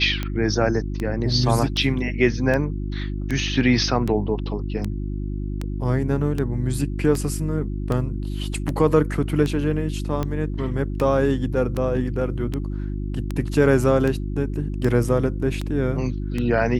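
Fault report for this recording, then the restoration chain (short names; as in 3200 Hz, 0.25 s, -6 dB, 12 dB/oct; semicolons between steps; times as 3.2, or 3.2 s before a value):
hum 50 Hz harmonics 7 -27 dBFS
tick 78 rpm -13 dBFS
8.54 gap 2 ms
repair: de-click; de-hum 50 Hz, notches 7; interpolate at 8.54, 2 ms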